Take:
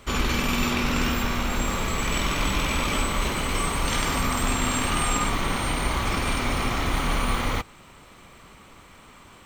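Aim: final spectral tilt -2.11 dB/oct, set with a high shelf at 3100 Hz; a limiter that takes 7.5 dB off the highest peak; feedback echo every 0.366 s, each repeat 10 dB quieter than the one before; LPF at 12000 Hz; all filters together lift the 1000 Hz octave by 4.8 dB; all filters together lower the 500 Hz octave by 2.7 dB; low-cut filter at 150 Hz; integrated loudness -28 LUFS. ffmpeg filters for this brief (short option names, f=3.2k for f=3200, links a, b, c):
-af "highpass=150,lowpass=12k,equalizer=f=500:t=o:g=-5.5,equalizer=f=1k:t=o:g=6.5,highshelf=f=3.1k:g=4,alimiter=limit=-17.5dB:level=0:latency=1,aecho=1:1:366|732|1098|1464:0.316|0.101|0.0324|0.0104,volume=-2.5dB"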